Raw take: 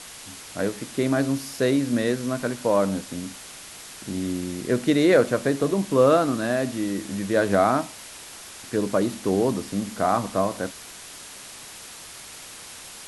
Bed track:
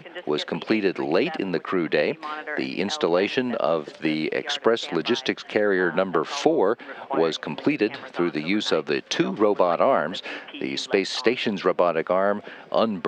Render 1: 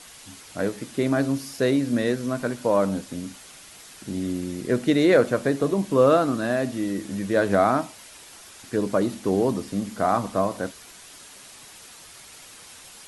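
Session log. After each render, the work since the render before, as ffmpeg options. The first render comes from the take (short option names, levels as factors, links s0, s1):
-af "afftdn=nr=6:nf=-42"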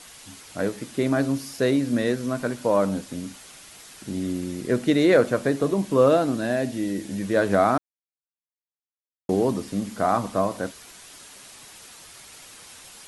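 -filter_complex "[0:a]asettb=1/sr,asplit=3[s0][s1][s2];[s0]atrim=end=6.084[s3];[s1]atrim=start=6.08:end=7.21,asetpts=PTS-STARTPTS,afade=t=in:d=0.004:c=qsin,afade=t=out:st=1.126:d=0.004:c=qsin,equalizer=f=1200:w=3.8:g=-9[s4];[s2]atrim=start=7.206[s5];[s3][s4]acrossfade=d=0.004:c1=hsin:c2=qsin[s6];[s6][s5]acrossfade=d=0.004:c1=qsin:c2=hsin,asplit=3[s7][s8][s9];[s7]atrim=end=7.78,asetpts=PTS-STARTPTS,afade=t=out:st=7.776:d=0.004:c=hsin[s10];[s8]atrim=start=7.78:end=9.29,asetpts=PTS-STARTPTS,volume=0[s11];[s9]atrim=start=9.29,asetpts=PTS-STARTPTS,afade=t=in:d=0.004:c=hsin[s12];[s10][s11][s12]concat=n=3:v=0:a=1"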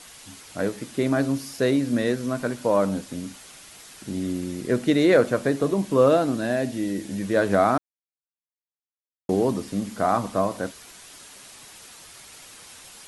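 -af anull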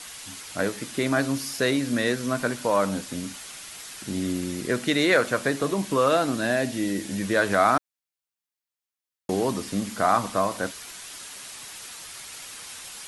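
-filter_complex "[0:a]acrossover=split=950[s0][s1];[s0]alimiter=limit=0.15:level=0:latency=1:release=293[s2];[s1]acontrast=37[s3];[s2][s3]amix=inputs=2:normalize=0"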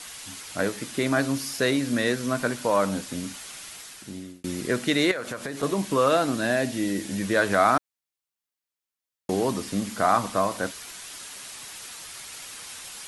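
-filter_complex "[0:a]asettb=1/sr,asplit=3[s0][s1][s2];[s0]atrim=end=5.114[s3];[s1]atrim=start=5.11:end=5.63,asetpts=PTS-STARTPTS,afade=t=in:d=0.004:c=qsin,afade=t=out:st=0.516:d=0.004:c=qsin,acompressor=threshold=0.0355:ratio=5:attack=3.2:release=140:knee=1:detection=peak[s4];[s2]atrim=start=5.626[s5];[s3][s4]acrossfade=d=0.004:c1=hsin:c2=qsin[s6];[s6][s5]acrossfade=d=0.004:c1=qsin:c2=hsin,asplit=2[s7][s8];[s7]atrim=end=4.44,asetpts=PTS-STARTPTS,afade=t=out:st=3.68:d=0.76[s9];[s8]atrim=start=4.44,asetpts=PTS-STARTPTS,afade=t=in:d=0.004:c=hsin[s10];[s9][s10]concat=n=2:v=0:a=1"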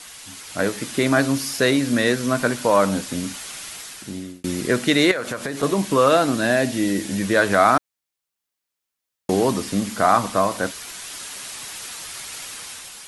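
-af "dynaudnorm=f=230:g=5:m=2"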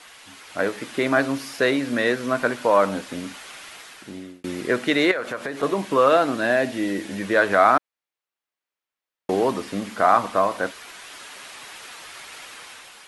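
-af "bass=f=250:g=-10,treble=f=4000:g=-12"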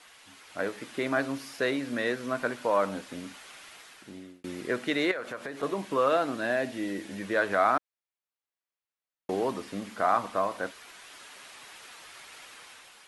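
-af "volume=0.398"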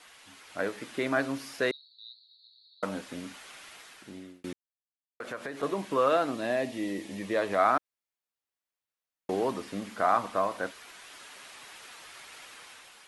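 -filter_complex "[0:a]asettb=1/sr,asplit=3[s0][s1][s2];[s0]atrim=end=1.714[s3];[s1]atrim=start=1.71:end=2.83,asetpts=PTS-STARTPTS,afade=t=in:d=0.004:c=qsin,afade=t=out:st=1.116:d=0.004:c=qsin,asuperpass=centerf=4100:order=8:qfactor=5.3[s4];[s2]atrim=start=2.826[s5];[s3][s4]acrossfade=d=0.004:c1=hsin:c2=qsin[s6];[s6][s5]acrossfade=d=0.004:c1=qsin:c2=hsin,asettb=1/sr,asplit=3[s7][s8][s9];[s7]atrim=end=6.314[s10];[s8]atrim=start=6.31:end=7.59,asetpts=PTS-STARTPTS,afade=t=in:d=0.004:c=qsin,afade=t=out:st=1.276:d=0.004:c=qsin,equalizer=f=1500:t=o:w=0.25:g=-13.5[s11];[s9]atrim=start=7.586[s12];[s10][s11]acrossfade=d=0.004:c1=hsin:c2=qsin[s13];[s13][s12]acrossfade=d=0.004:c1=qsin:c2=hsin,asplit=3[s14][s15][s16];[s14]atrim=end=4.53,asetpts=PTS-STARTPTS,afade=t=out:st=4.526:d=0.004:c=hsin[s17];[s15]atrim=start=4.53:end=5.2,asetpts=PTS-STARTPTS,volume=0[s18];[s16]atrim=start=5.2,asetpts=PTS-STARTPTS,afade=t=in:d=0.004:c=hsin[s19];[s17][s18][s19]concat=n=3:v=0:a=1"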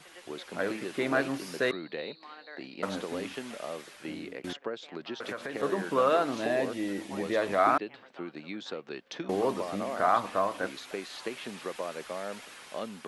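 -filter_complex "[1:a]volume=0.158[s0];[0:a][s0]amix=inputs=2:normalize=0"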